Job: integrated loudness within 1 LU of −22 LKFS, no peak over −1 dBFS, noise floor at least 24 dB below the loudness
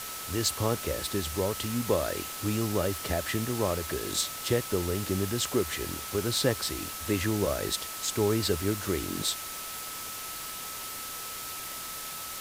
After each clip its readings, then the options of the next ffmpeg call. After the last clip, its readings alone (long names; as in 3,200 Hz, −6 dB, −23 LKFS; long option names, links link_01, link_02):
interfering tone 1,300 Hz; level of the tone −44 dBFS; background noise floor −39 dBFS; target noise floor −54 dBFS; integrated loudness −30.0 LKFS; sample peak −12.0 dBFS; target loudness −22.0 LKFS
→ -af "bandreject=frequency=1300:width=30"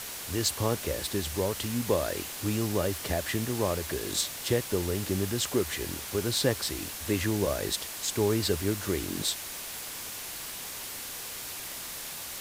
interfering tone none found; background noise floor −39 dBFS; target noise floor −55 dBFS
→ -af "afftdn=noise_reduction=16:noise_floor=-39"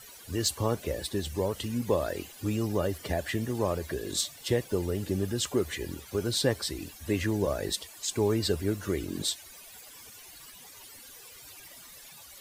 background noise floor −50 dBFS; target noise floor −55 dBFS
→ -af "afftdn=noise_reduction=6:noise_floor=-50"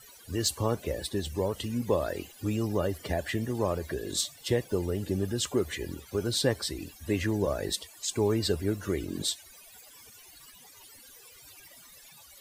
background noise floor −53 dBFS; target noise floor −55 dBFS
→ -af "afftdn=noise_reduction=6:noise_floor=-53"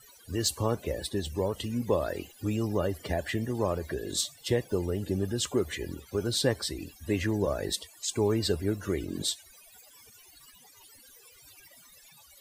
background noise floor −56 dBFS; integrated loudness −31.0 LKFS; sample peak −12.5 dBFS; target loudness −22.0 LKFS
→ -af "volume=9dB"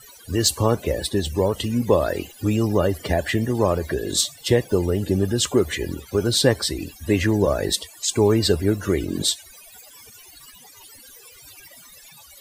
integrated loudness −22.0 LKFS; sample peak −3.5 dBFS; background noise floor −47 dBFS